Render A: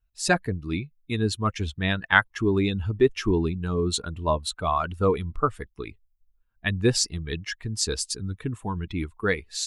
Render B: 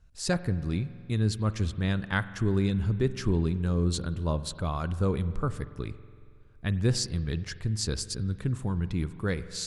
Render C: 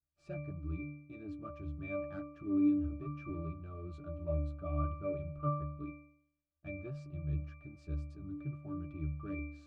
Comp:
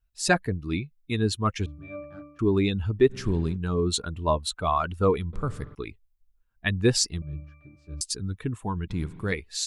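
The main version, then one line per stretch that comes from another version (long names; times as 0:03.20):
A
0:01.66–0:02.39: punch in from C
0:03.12–0:03.55: punch in from B, crossfade 0.06 s
0:05.33–0:05.75: punch in from B
0:07.22–0:08.01: punch in from C
0:08.90–0:09.32: punch in from B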